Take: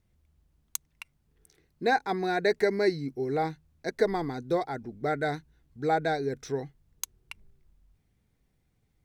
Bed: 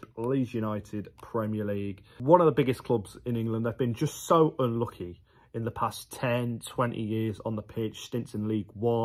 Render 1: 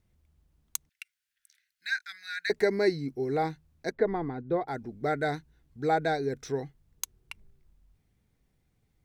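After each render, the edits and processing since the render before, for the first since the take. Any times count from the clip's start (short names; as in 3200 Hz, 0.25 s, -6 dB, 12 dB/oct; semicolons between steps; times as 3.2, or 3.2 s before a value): 0.89–2.5 elliptic high-pass 1500 Hz; 3.92–4.68 air absorption 490 m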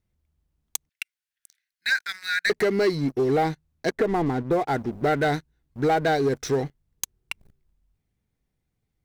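compressor 2.5:1, threshold -29 dBFS, peak gain reduction 7 dB; sample leveller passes 3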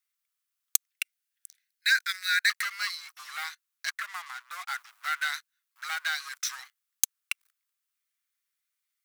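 elliptic high-pass 1200 Hz, stop band 70 dB; high shelf 6600 Hz +10 dB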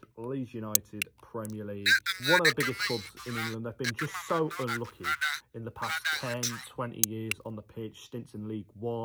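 add bed -7.5 dB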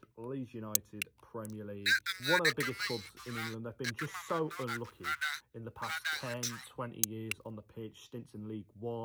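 gain -5.5 dB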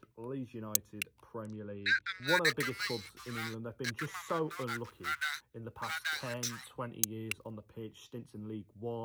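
1.41–2.27 LPF 4700 Hz -> 2700 Hz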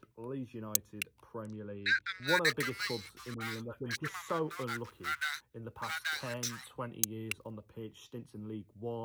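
3.34–4.09 dispersion highs, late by 67 ms, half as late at 880 Hz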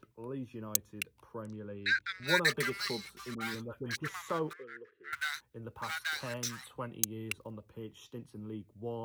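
2.23–3.55 comb 5.1 ms; 4.53–5.13 double band-pass 860 Hz, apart 2 oct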